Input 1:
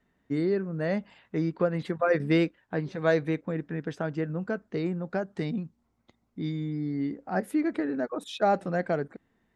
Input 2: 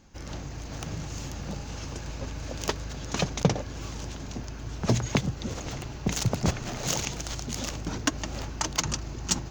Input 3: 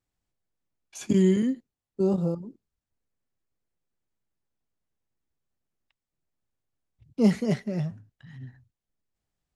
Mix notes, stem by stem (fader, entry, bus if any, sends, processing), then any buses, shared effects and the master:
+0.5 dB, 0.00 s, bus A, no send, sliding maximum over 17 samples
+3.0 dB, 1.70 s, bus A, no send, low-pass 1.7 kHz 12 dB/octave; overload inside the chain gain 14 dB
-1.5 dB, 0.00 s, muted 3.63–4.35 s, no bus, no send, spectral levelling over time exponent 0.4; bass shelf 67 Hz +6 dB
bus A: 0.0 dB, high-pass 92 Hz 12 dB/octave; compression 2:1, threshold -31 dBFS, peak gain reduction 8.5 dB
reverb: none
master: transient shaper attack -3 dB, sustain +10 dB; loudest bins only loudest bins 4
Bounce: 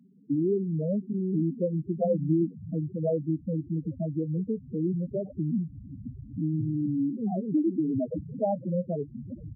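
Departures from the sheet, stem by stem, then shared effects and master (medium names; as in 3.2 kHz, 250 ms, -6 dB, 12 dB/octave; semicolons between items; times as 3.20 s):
stem 1 +0.5 dB -> +12.0 dB; stem 3 -1.5 dB -> -12.0 dB; master: missing transient shaper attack -3 dB, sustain +10 dB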